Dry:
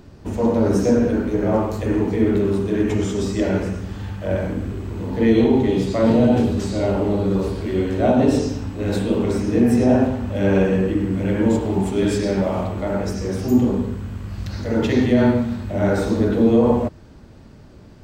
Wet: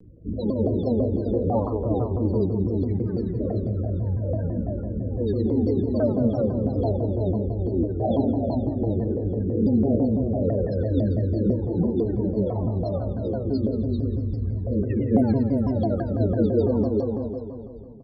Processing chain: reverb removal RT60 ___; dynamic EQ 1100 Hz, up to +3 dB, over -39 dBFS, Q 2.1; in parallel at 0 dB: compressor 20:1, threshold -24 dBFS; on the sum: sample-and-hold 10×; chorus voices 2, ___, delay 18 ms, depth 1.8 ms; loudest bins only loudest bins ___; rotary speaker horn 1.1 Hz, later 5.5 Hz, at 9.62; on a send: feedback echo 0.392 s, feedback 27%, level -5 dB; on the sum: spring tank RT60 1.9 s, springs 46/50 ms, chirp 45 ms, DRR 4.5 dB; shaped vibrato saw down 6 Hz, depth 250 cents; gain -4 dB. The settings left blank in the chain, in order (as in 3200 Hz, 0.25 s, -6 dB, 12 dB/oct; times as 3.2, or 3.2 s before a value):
0.74 s, 0.64 Hz, 16